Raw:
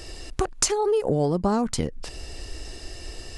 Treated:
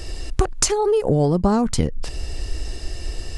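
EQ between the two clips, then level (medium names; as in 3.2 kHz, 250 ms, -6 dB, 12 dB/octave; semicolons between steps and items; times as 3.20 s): bass shelf 140 Hz +8.5 dB; +3.0 dB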